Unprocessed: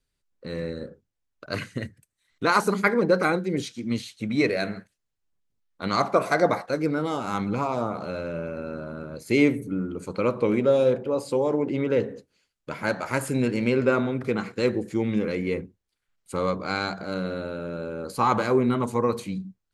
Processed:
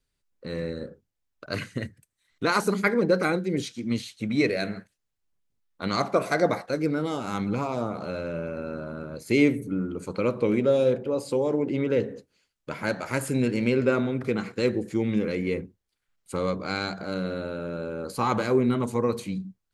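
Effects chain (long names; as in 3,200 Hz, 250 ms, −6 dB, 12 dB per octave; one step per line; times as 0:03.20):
dynamic equaliser 1,000 Hz, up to −5 dB, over −35 dBFS, Q 1.1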